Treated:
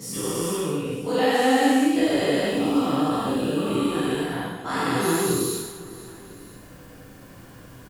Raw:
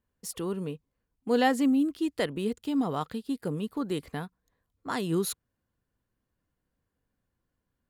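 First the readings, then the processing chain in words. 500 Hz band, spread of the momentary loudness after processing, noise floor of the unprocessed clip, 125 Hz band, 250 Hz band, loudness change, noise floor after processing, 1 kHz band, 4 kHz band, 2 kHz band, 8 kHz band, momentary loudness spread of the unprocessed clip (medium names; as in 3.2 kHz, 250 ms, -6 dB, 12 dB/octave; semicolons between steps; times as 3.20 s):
+8.5 dB, 15 LU, -83 dBFS, +6.5 dB, +6.5 dB, +7.0 dB, -45 dBFS, +8.5 dB, +10.5 dB, +9.5 dB, +11.0 dB, 15 LU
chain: every event in the spectrogram widened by 480 ms; reverse; upward compressor, threshold -34 dBFS; reverse; feedback delay 500 ms, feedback 33%, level -22 dB; gated-style reverb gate 290 ms falling, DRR -5.5 dB; three bands compressed up and down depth 40%; trim -7.5 dB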